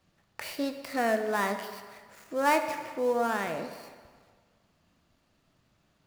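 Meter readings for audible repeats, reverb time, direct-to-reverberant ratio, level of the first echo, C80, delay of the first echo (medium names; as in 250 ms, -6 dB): no echo, 1.7 s, 6.5 dB, no echo, 10.0 dB, no echo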